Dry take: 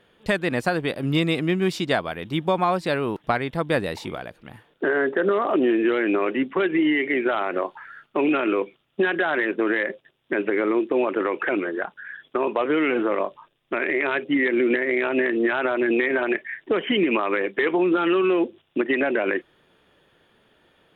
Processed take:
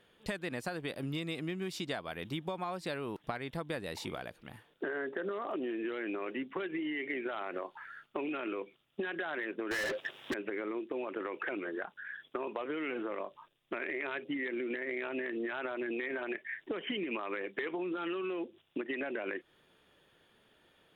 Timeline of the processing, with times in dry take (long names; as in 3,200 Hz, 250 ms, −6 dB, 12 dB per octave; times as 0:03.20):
0:09.71–0:10.34: mid-hump overdrive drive 36 dB, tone 2,800 Hz, clips at −10.5 dBFS
whole clip: downward compressor 6 to 1, threshold −27 dBFS; high-shelf EQ 3,600 Hz +6.5 dB; level −7.5 dB